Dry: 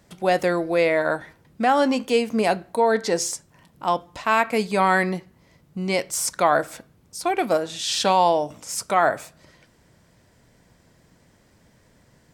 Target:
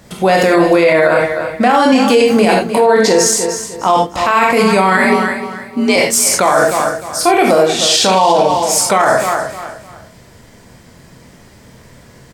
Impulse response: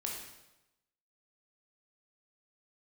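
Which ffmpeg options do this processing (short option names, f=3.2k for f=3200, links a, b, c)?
-filter_complex "[0:a]asettb=1/sr,asplit=3[a][b][c];[a]atrim=end=4.974[d];[b]atrim=start=4.97:end=5.96,asetpts=PTS-STARTPTS,afade=t=in:d=0.004:c=qsin,afade=t=out:st=0.986:d=0.004:c=qsin,afreqshift=47[e];[c]atrim=start=5.956[f];[d][e]acrossfade=d=0.004:c1=hsin:c2=qsin[g];[g][f]acrossfade=d=0.004:c1=qsin:c2=hsin,aecho=1:1:304|608|912:0.224|0.0627|0.0176[h];[1:a]atrim=start_sample=2205,afade=t=out:st=0.15:d=0.01,atrim=end_sample=7056[i];[h][i]afir=irnorm=-1:irlink=0,alimiter=level_in=17dB:limit=-1dB:release=50:level=0:latency=1,volume=-1dB"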